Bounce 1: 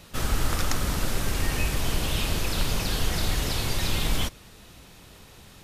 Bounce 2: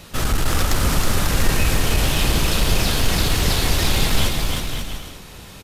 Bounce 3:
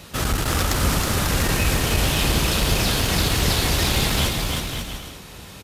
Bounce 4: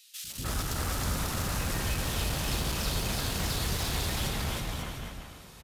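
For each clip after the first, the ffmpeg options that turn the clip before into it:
-filter_complex "[0:a]aeval=exprs='0.282*sin(PI/2*1.78*val(0)/0.282)':c=same,asplit=2[a][b];[b]aecho=0:1:320|544|700.8|810.6|887.4:0.631|0.398|0.251|0.158|0.1[c];[a][c]amix=inputs=2:normalize=0,volume=-1.5dB"
-af "highpass=44"
-filter_complex "[0:a]volume=16dB,asoftclip=hard,volume=-16dB,acrossover=split=360|2700[a][b][c];[a]adelay=240[d];[b]adelay=300[e];[d][e][c]amix=inputs=3:normalize=0,volume=-9dB"

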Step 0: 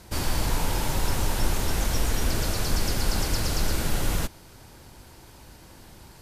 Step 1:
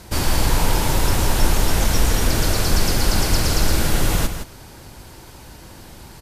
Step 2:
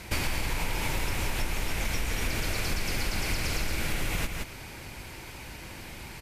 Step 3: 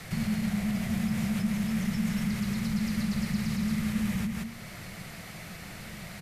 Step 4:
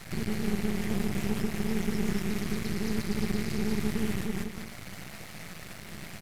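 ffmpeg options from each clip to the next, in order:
-af "aecho=1:1:167:0.355,volume=7dB"
-af "equalizer=f=2.3k:w=2.1:g=12,acompressor=threshold=-22dB:ratio=10,volume=-3dB"
-filter_complex "[0:a]acrossover=split=300[a][b];[b]alimiter=level_in=7dB:limit=-24dB:level=0:latency=1:release=335,volume=-7dB[c];[a][c]amix=inputs=2:normalize=0,afreqshift=-230"
-af "aecho=1:1:202:0.562,aeval=exprs='max(val(0),0)':c=same,volume=2dB"

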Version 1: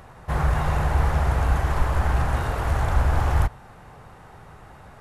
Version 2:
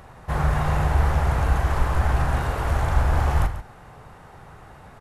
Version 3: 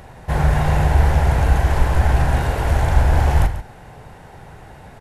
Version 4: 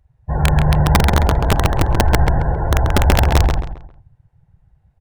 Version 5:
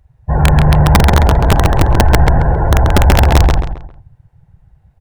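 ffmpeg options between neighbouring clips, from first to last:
-af "aecho=1:1:40.82|139.9:0.282|0.251"
-af "equalizer=f=1.2k:t=o:w=0.33:g=-10.5,volume=5.5dB"
-filter_complex "[0:a]afftdn=nr=33:nf=-23,aeval=exprs='(mod(2.11*val(0)+1,2)-1)/2.11':c=same,asplit=2[a][b];[b]adelay=134,lowpass=f=3k:p=1,volume=-3.5dB,asplit=2[c][d];[d]adelay=134,lowpass=f=3k:p=1,volume=0.33,asplit=2[e][f];[f]adelay=134,lowpass=f=3k:p=1,volume=0.33,asplit=2[g][h];[h]adelay=134,lowpass=f=3k:p=1,volume=0.33[i];[a][c][e][g][i]amix=inputs=5:normalize=0"
-af "asoftclip=type=tanh:threshold=-8.5dB,volume=7dB"

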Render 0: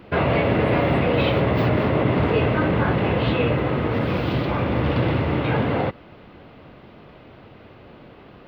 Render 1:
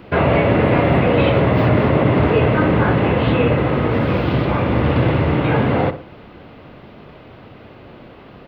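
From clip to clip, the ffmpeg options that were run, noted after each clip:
-filter_complex "[0:a]acrossover=split=3200[a][b];[b]acompressor=threshold=-47dB:ratio=4:attack=1:release=60[c];[a][c]amix=inputs=2:normalize=0,asplit=2[d][e];[e]adelay=61,lowpass=f=1.6k:p=1,volume=-11dB,asplit=2[f][g];[g]adelay=61,lowpass=f=1.6k:p=1,volume=0.38,asplit=2[h][i];[i]adelay=61,lowpass=f=1.6k:p=1,volume=0.38,asplit=2[j][k];[k]adelay=61,lowpass=f=1.6k:p=1,volume=0.38[l];[d][f][h][j][l]amix=inputs=5:normalize=0,volume=4.5dB"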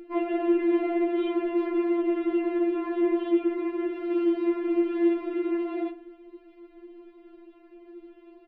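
-af "firequalizer=gain_entry='entry(120,0);entry(180,10);entry(750,-11);entry(2600,-9);entry(3800,-13)':delay=0.05:min_phase=1,afftfilt=real='re*4*eq(mod(b,16),0)':imag='im*4*eq(mod(b,16),0)':win_size=2048:overlap=0.75,volume=-6dB"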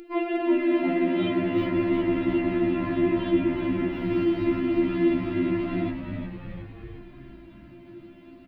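-filter_complex "[0:a]highshelf=f=2.3k:g=10.5,asplit=2[a][b];[b]asplit=8[c][d][e][f][g][h][i][j];[c]adelay=360,afreqshift=-79,volume=-7dB[k];[d]adelay=720,afreqshift=-158,volume=-11.4dB[l];[e]adelay=1080,afreqshift=-237,volume=-15.9dB[m];[f]adelay=1440,afreqshift=-316,volume=-20.3dB[n];[g]adelay=1800,afreqshift=-395,volume=-24.7dB[o];[h]adelay=2160,afreqshift=-474,volume=-29.2dB[p];[i]adelay=2520,afreqshift=-553,volume=-33.6dB[q];[j]adelay=2880,afreqshift=-632,volume=-38.1dB[r];[k][l][m][n][o][p][q][r]amix=inputs=8:normalize=0[s];[a][s]amix=inputs=2:normalize=0"

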